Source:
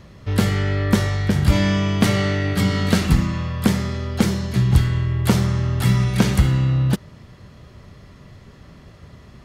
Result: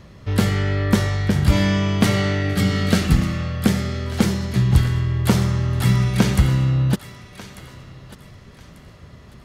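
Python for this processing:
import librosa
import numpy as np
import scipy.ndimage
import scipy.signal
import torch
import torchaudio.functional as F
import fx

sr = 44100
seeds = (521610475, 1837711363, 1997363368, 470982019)

p1 = fx.notch(x, sr, hz=990.0, q=5.9, at=(2.42, 4.06))
y = p1 + fx.echo_thinned(p1, sr, ms=1193, feedback_pct=29, hz=630.0, wet_db=-14, dry=0)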